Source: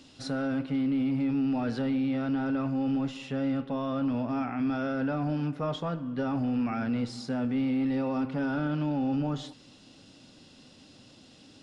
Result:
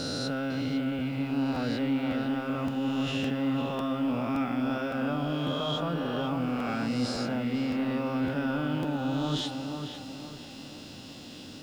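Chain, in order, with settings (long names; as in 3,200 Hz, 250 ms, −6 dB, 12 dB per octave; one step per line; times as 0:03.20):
peak hold with a rise ahead of every peak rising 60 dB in 1.74 s
dynamic equaliser 3,000 Hz, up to +6 dB, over −57 dBFS, Q 2.1
reversed playback
downward compressor, threshold −33 dBFS, peak gain reduction 9 dB
reversed playback
bit reduction 11 bits
on a send: tape delay 501 ms, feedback 48%, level −4.5 dB, low-pass 2,000 Hz
on the sum: regular buffer underruns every 0.56 s, samples 512, repeat, from 0:00.98
level +5 dB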